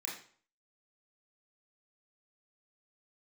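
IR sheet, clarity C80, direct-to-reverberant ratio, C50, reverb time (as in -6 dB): 9.0 dB, -4.5 dB, 4.5 dB, 0.50 s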